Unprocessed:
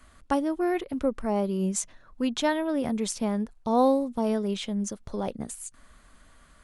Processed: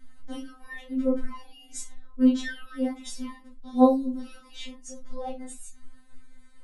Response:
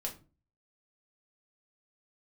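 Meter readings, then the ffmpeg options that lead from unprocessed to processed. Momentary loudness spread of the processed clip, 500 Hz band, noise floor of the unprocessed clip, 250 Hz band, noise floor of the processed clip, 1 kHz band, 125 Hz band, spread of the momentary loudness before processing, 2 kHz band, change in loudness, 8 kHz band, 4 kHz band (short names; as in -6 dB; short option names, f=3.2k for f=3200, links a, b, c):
22 LU, -3.5 dB, -57 dBFS, +1.0 dB, -51 dBFS, -4.0 dB, under -15 dB, 10 LU, -2.5 dB, +1.0 dB, -7.0 dB, -5.0 dB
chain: -filter_complex "[1:a]atrim=start_sample=2205,afade=t=out:st=0.16:d=0.01,atrim=end_sample=7497[a];[0:a][a]afir=irnorm=-1:irlink=0,afftfilt=real='re*3.46*eq(mod(b,12),0)':imag='im*3.46*eq(mod(b,12),0)':win_size=2048:overlap=0.75,volume=-3dB"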